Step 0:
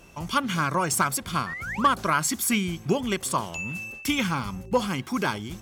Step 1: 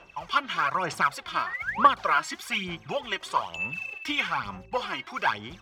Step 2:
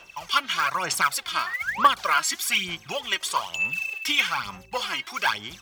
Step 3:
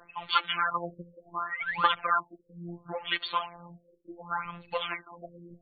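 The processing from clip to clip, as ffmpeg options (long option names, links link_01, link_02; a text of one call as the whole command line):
ffmpeg -i in.wav -filter_complex "[0:a]acrossover=split=550 4400:gain=0.158 1 0.0631[link_01][link_02][link_03];[link_01][link_02][link_03]amix=inputs=3:normalize=0,aphaser=in_gain=1:out_gain=1:delay=3.2:decay=0.61:speed=1.1:type=sinusoidal" out.wav
ffmpeg -i in.wav -af "crystalizer=i=6.5:c=0,volume=-3dB" out.wav
ffmpeg -i in.wav -af "afftfilt=real='hypot(re,im)*cos(PI*b)':imag='0':win_size=1024:overlap=0.75,afftfilt=real='re*lt(b*sr/1024,550*pow(4600/550,0.5+0.5*sin(2*PI*0.69*pts/sr)))':imag='im*lt(b*sr/1024,550*pow(4600/550,0.5+0.5*sin(2*PI*0.69*pts/sr)))':win_size=1024:overlap=0.75" out.wav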